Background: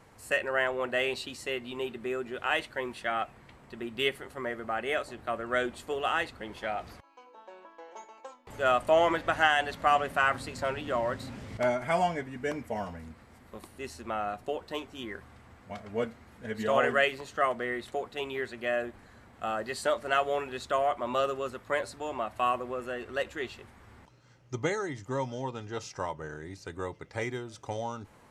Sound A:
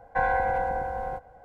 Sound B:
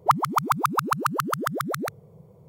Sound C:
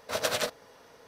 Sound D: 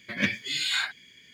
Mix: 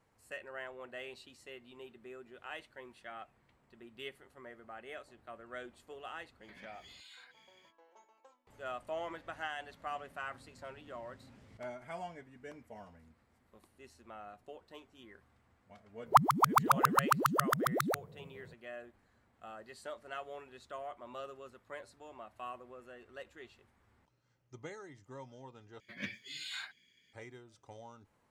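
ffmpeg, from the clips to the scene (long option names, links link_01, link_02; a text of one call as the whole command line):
ffmpeg -i bed.wav -i cue0.wav -i cue1.wav -i cue2.wav -i cue3.wav -filter_complex "[4:a]asplit=2[link_01][link_02];[0:a]volume=-16.5dB[link_03];[link_01]acompressor=threshold=-42dB:ratio=6:attack=3.2:release=140:knee=1:detection=peak[link_04];[link_03]asplit=2[link_05][link_06];[link_05]atrim=end=25.804[link_07];[link_02]atrim=end=1.33,asetpts=PTS-STARTPTS,volume=-15.5dB[link_08];[link_06]atrim=start=27.126[link_09];[link_04]atrim=end=1.33,asetpts=PTS-STARTPTS,volume=-12dB,afade=type=in:duration=0.05,afade=type=out:start_time=1.28:duration=0.05,adelay=6400[link_10];[2:a]atrim=end=2.48,asetpts=PTS-STARTPTS,volume=-4dB,afade=type=in:duration=0.004:curve=hsin,afade=type=out:start_time=2.476:duration=0.004:curve=hsin,adelay=16060[link_11];[link_07][link_08]acrossfade=duration=0.004:curve1=hsin:curve2=hsin[link_12];[link_12][link_09]acrossfade=duration=0.004:curve1=hsin:curve2=hsin[link_13];[link_13][link_10][link_11]amix=inputs=3:normalize=0" out.wav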